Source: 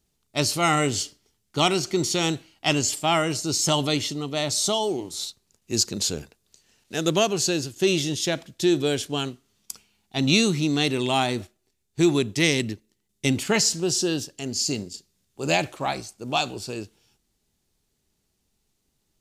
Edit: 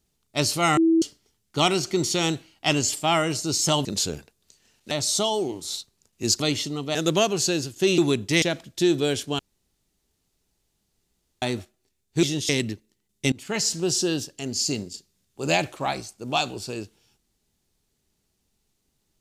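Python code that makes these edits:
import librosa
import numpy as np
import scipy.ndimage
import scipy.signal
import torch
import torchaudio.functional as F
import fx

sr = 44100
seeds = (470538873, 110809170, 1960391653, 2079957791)

y = fx.edit(x, sr, fx.bleep(start_s=0.77, length_s=0.25, hz=327.0, db=-15.0),
    fx.swap(start_s=3.85, length_s=0.55, other_s=5.89, other_length_s=1.06),
    fx.swap(start_s=7.98, length_s=0.26, other_s=12.05, other_length_s=0.44),
    fx.room_tone_fill(start_s=9.21, length_s=2.03),
    fx.fade_in_from(start_s=13.32, length_s=0.48, floor_db=-23.5), tone=tone)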